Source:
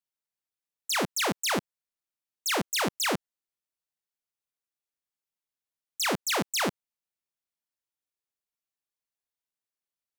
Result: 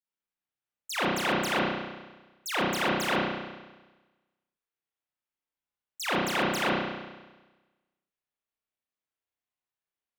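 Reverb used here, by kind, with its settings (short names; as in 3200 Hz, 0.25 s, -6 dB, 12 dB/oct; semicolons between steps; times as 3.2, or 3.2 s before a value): spring tank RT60 1.2 s, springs 32 ms, chirp 80 ms, DRR -9 dB; gain -7.5 dB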